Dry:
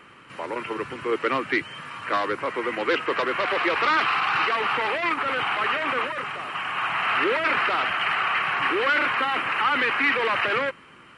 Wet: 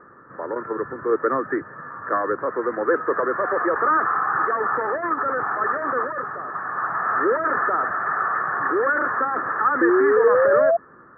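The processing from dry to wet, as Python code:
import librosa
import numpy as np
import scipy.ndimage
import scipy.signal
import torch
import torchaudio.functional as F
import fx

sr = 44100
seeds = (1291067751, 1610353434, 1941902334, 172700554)

y = scipy.signal.sosfilt(scipy.signal.cheby1(6, 6, 1800.0, 'lowpass', fs=sr, output='sos'), x)
y = fx.spec_paint(y, sr, seeds[0], shape='rise', start_s=9.81, length_s=0.96, low_hz=330.0, high_hz=690.0, level_db=-22.0)
y = y * 10.0 ** (5.0 / 20.0)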